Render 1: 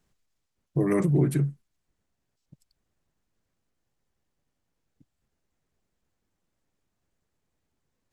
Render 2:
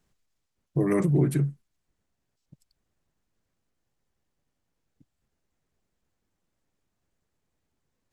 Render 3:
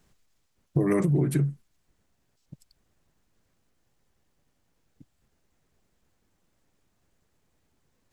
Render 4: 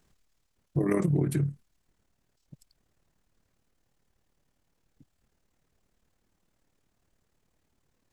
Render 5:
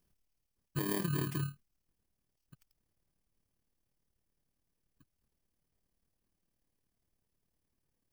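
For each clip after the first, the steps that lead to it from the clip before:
no audible change
compression 6:1, threshold -28 dBFS, peak gain reduction 10.5 dB; trim +7.5 dB
AM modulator 37 Hz, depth 40%
bit-reversed sample order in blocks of 32 samples; trim -8.5 dB

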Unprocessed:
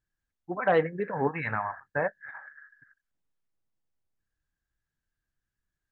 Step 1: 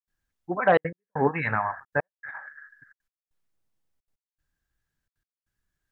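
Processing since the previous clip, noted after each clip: trance gate ".xxxxxxxxx.x.." 195 bpm -60 dB; trim +4.5 dB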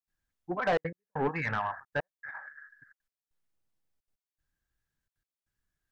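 saturation -18 dBFS, distortion -10 dB; trim -3.5 dB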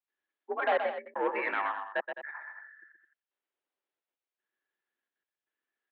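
multi-tap echo 124/211 ms -7/-12.5 dB; mistuned SSB +63 Hz 260–3500 Hz

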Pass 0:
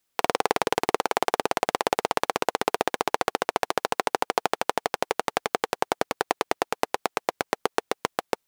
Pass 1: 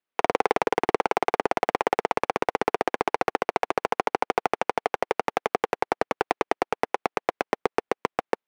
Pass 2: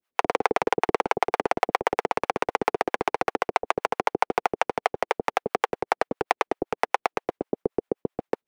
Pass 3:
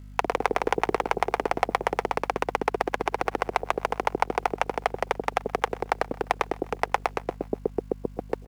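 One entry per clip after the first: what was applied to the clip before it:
three-band isolator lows -13 dB, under 190 Hz, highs -18 dB, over 3.2 kHz; waveshaping leveller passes 2; trim -3 dB
in parallel at +2.5 dB: peak limiter -18 dBFS, peak gain reduction 9.5 dB; on the sum: harmonic tremolo 7.7 Hz, depth 100%, crossover 500 Hz; trim +1.5 dB
hum 50 Hz, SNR 15 dB; feedback delay 127 ms, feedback 60%, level -22 dB; word length cut 10-bit, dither none; trim -1.5 dB

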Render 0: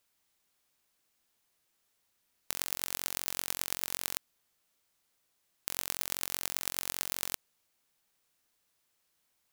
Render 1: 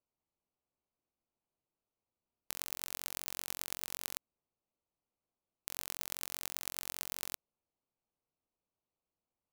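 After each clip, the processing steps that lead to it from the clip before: local Wiener filter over 25 samples; trim -5.5 dB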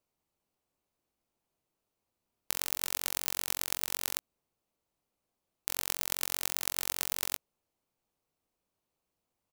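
doubling 20 ms -13 dB; trim +7 dB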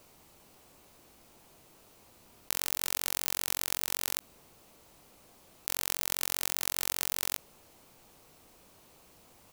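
level flattener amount 50%; trim -1 dB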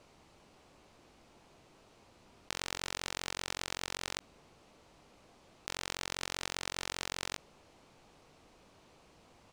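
distance through air 90 m

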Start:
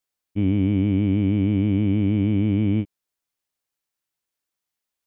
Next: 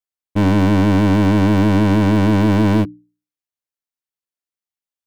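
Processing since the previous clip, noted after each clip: waveshaping leveller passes 5; hum notches 60/120/180/240/300 Hz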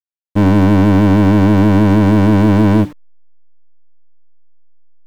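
send-on-delta sampling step -33.5 dBFS; treble shelf 2.6 kHz -8 dB; trim +4 dB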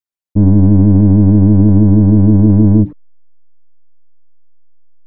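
resonances exaggerated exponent 2; trim +2.5 dB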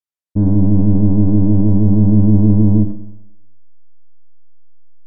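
Schroeder reverb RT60 0.87 s, combs from 26 ms, DRR 9 dB; low-pass that closes with the level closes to 1.3 kHz, closed at -3 dBFS; trim -4.5 dB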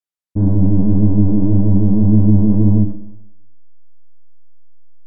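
flange 1.8 Hz, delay 7.2 ms, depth 8.4 ms, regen -33%; trim +2.5 dB

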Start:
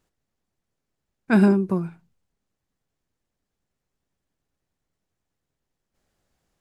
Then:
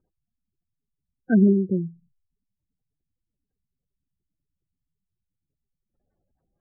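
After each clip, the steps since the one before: low-pass 3 kHz 6 dB/octave; spectral gate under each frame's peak -15 dB strong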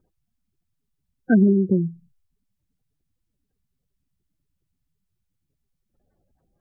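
compression 3:1, threshold -21 dBFS, peak gain reduction 6.5 dB; trim +6.5 dB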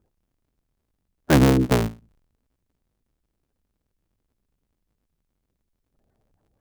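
cycle switcher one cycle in 3, inverted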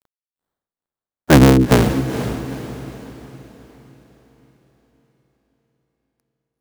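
bit crusher 10-bit; echo that smears into a reverb 463 ms, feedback 44%, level -10 dB; trim +6.5 dB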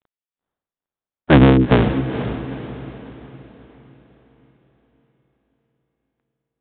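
resampled via 8 kHz; trim -1 dB

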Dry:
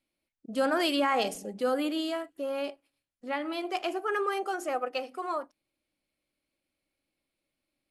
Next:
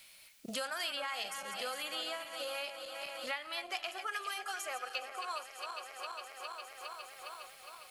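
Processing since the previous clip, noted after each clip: backward echo that repeats 204 ms, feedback 70%, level -11 dB; amplifier tone stack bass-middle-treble 10-0-10; three bands compressed up and down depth 100%; trim +1 dB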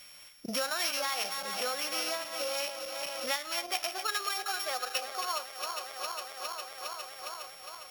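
sorted samples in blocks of 8 samples; trim +6 dB

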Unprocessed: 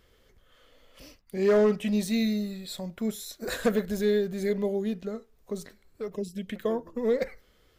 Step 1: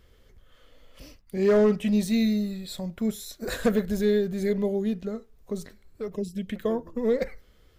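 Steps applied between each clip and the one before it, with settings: bass shelf 180 Hz +8 dB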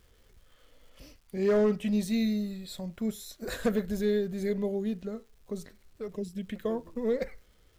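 crackle 590 per s -52 dBFS; trim -4.5 dB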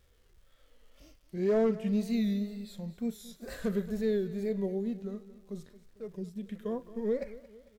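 wow and flutter 110 cents; feedback delay 225 ms, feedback 47%, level -17.5 dB; harmonic-percussive split percussive -9 dB; trim -2 dB

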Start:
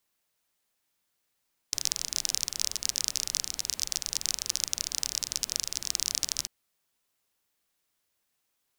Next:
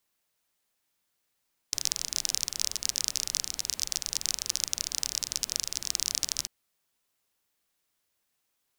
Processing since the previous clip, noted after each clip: no audible change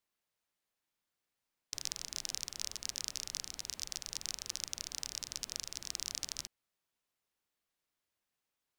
treble shelf 5.5 kHz -7 dB; trim -6.5 dB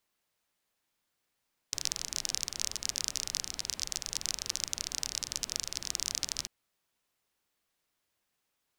loudspeaker Doppler distortion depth 0.17 ms; trim +6.5 dB

